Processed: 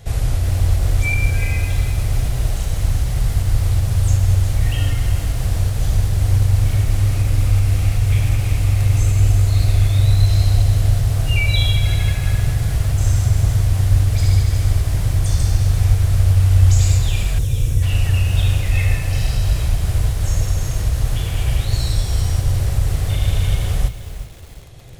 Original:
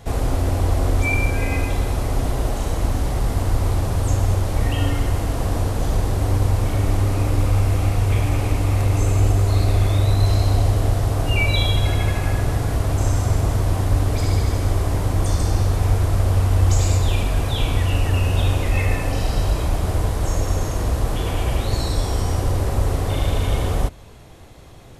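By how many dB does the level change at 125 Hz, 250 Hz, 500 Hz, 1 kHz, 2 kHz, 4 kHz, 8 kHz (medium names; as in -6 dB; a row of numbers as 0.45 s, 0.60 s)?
+3.5 dB, -4.5 dB, -7.5 dB, -7.5 dB, +0.5 dB, +1.5 dB, +2.5 dB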